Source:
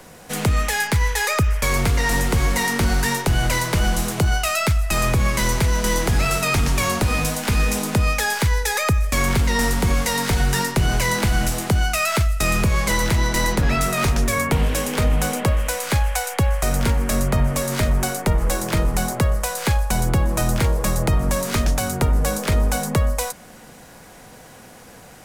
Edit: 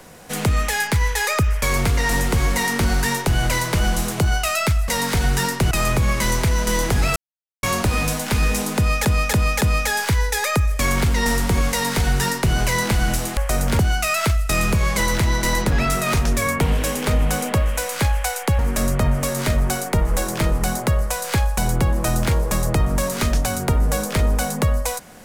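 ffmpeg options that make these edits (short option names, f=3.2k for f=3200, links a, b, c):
-filter_complex "[0:a]asplit=11[a][b][c][d][e][f][g][h][i][j][k];[a]atrim=end=4.882[l];[b]atrim=start=10.038:end=10.872[m];[c]atrim=start=4.878:end=6.33,asetpts=PTS-STARTPTS,afade=t=out:st=1.448:d=0.004:c=hsin[n];[d]atrim=start=6.33:end=6.8,asetpts=PTS-STARTPTS,volume=0[o];[e]atrim=start=6.8:end=8.222,asetpts=PTS-STARTPTS,afade=t=in:d=0.004:c=hsin[p];[f]atrim=start=7.938:end=8.222[q];[g]atrim=start=7.938:end=8.222[r];[h]atrim=start=7.938:end=11.702[s];[i]atrim=start=16.498:end=16.922[t];[j]atrim=start=11.698:end=16.502[u];[k]atrim=start=16.918[v];[l][m]acrossfade=d=0.004:c1=hsin:c2=hsin[w];[n][o][p]concat=n=3:v=0:a=1[x];[w][x]acrossfade=d=0.004:c1=hsin:c2=hsin[y];[y][q]acrossfade=d=0.004:c1=hsin:c2=hsin[z];[z][r]acrossfade=d=0.004:c1=hsin:c2=hsin[aa];[aa][s]acrossfade=d=0.004:c1=hsin:c2=hsin[ab];[ab][t]acrossfade=d=0.004:c1=hsin:c2=hsin[ac];[ac][u]acrossfade=d=0.004:c1=hsin:c2=hsin[ad];[ad][v]acrossfade=d=0.004:c1=hsin:c2=hsin"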